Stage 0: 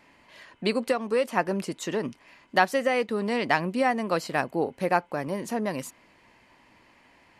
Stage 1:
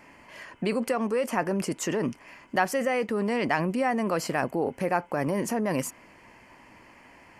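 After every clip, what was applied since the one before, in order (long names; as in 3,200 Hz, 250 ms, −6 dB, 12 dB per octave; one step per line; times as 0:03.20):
parametric band 3,800 Hz −14.5 dB 0.34 octaves
in parallel at +1.5 dB: compressor whose output falls as the input rises −32 dBFS, ratio −1
on the sum: level −4 dB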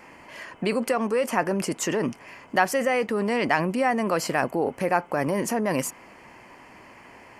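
low-shelf EQ 330 Hz −4 dB
noise in a band 91–1,100 Hz −58 dBFS
level +4 dB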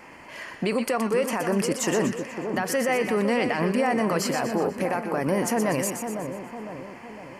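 brickwall limiter −17 dBFS, peak gain reduction 11.5 dB
on a send: echo with a time of its own for lows and highs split 1,400 Hz, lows 506 ms, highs 122 ms, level −7 dB
on the sum: level +1.5 dB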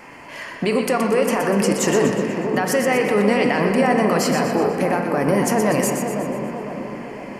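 convolution reverb RT60 3.6 s, pre-delay 7 ms, DRR 4 dB
level +4.5 dB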